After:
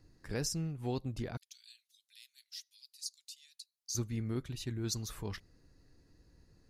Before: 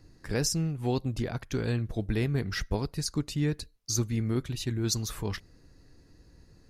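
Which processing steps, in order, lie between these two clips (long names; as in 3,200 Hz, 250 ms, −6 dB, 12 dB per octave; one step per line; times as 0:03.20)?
0:01.37–0:03.95: inverse Chebyshev high-pass filter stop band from 610 Hz, stop band 80 dB
level −7.5 dB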